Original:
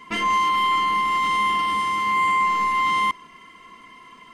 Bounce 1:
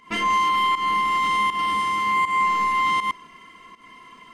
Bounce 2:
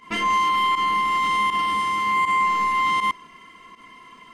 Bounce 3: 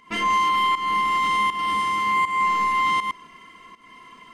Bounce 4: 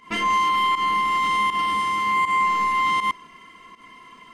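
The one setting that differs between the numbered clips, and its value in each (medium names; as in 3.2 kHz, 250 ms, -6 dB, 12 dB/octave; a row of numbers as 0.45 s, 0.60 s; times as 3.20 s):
volume shaper, release: 173 ms, 68 ms, 266 ms, 108 ms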